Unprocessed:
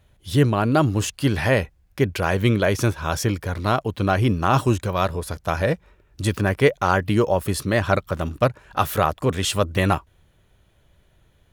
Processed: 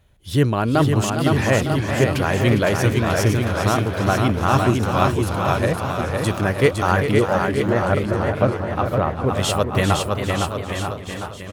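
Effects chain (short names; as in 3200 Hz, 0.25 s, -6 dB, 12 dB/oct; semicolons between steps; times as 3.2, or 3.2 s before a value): 7.11–9.35 LPF 1000 Hz 6 dB/oct; bouncing-ball echo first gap 0.51 s, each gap 0.85×, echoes 5; warbling echo 0.401 s, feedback 45%, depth 127 cents, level -9 dB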